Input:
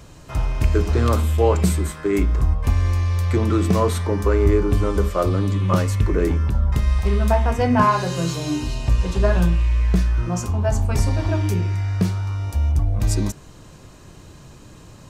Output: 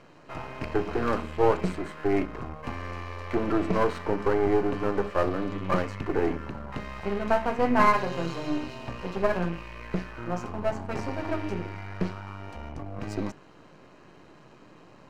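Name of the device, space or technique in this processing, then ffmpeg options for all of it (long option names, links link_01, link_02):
crystal radio: -af "highpass=230,lowpass=2700,aeval=exprs='if(lt(val(0),0),0.251*val(0),val(0))':channel_layout=same,bandreject=frequency=3500:width=10"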